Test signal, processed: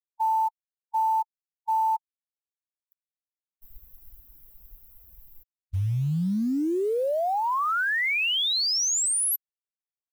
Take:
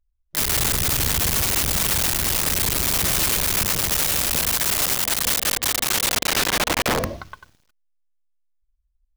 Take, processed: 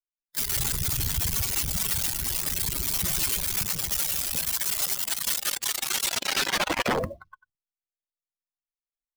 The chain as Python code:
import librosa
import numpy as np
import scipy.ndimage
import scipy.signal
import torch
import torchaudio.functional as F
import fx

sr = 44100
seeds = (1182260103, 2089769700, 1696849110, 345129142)

y = fx.bin_expand(x, sr, power=2.0)
y = fx.quant_float(y, sr, bits=4)